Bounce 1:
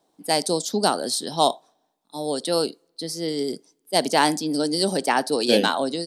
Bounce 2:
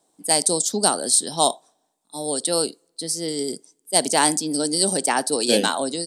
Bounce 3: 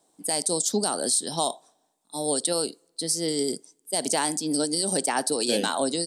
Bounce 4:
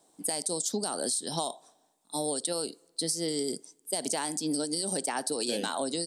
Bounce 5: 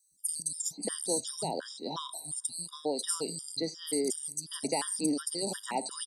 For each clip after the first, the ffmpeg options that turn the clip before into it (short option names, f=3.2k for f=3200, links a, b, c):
-af "equalizer=f=8.3k:w=1.6:g=14,volume=-1dB"
-af "alimiter=limit=-12dB:level=0:latency=1:release=151"
-af "acompressor=threshold=-29dB:ratio=6,volume=1.5dB"
-filter_complex "[0:a]acrossover=split=170|5000[a][b][c];[a]adelay=110[d];[b]adelay=590[e];[d][e][c]amix=inputs=3:normalize=0,afftfilt=real='re*gt(sin(2*PI*2.8*pts/sr)*(1-2*mod(floor(b*sr/1024/960),2)),0)':imag='im*gt(sin(2*PI*2.8*pts/sr)*(1-2*mod(floor(b*sr/1024/960),2)),0)':win_size=1024:overlap=0.75,volume=2.5dB"